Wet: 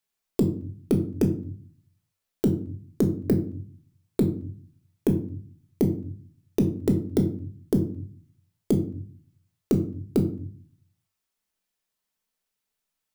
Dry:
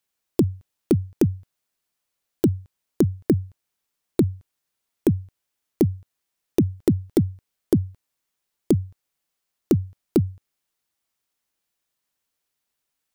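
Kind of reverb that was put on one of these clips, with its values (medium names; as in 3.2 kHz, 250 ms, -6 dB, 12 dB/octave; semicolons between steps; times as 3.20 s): simulated room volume 400 m³, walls furnished, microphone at 1.5 m; trim -4.5 dB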